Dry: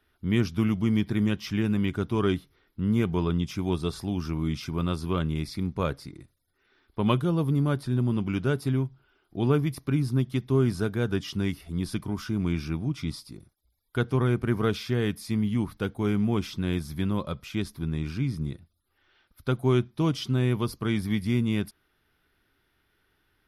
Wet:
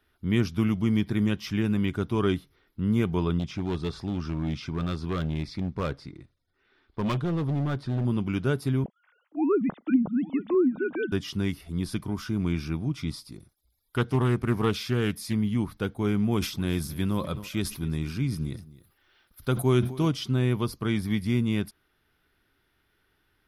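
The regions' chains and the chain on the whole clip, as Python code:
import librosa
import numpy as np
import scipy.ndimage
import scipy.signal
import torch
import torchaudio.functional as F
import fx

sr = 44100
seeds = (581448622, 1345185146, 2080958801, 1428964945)

y = fx.chain(x, sr, fx.lowpass(hz=4900.0, slope=12),
    fx.clip_hard(threshold_db=-23.5), at=(3.39, 8.05))
y = fx.chain(y, sr, fx.sine_speech(),
    fx.echo_single(ms=850, db=-19.5),
    fx.env_lowpass_down(base_hz=800.0, full_db=-18.0), at=(8.84, 11.12))
y = fx.chain(y, sr, fx.high_shelf(hz=3200.0, db=4.5),
    fx.doppler_dist(depth_ms=0.22), at=(13.32, 15.33))
y = fx.chain(y, sr, fx.high_shelf(hz=8200.0, db=10.5),
    fx.echo_single(ms=262, db=-19.0),
    fx.sustainer(db_per_s=110.0), at=(16.31, 20.08))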